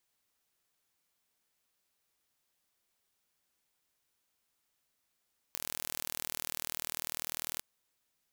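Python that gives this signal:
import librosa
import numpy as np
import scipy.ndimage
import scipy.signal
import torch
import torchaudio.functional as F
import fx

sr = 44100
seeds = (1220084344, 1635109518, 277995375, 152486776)

y = 10.0 ** (-9.5 / 20.0) * (np.mod(np.arange(round(2.05 * sr)), round(sr / 40.1)) == 0)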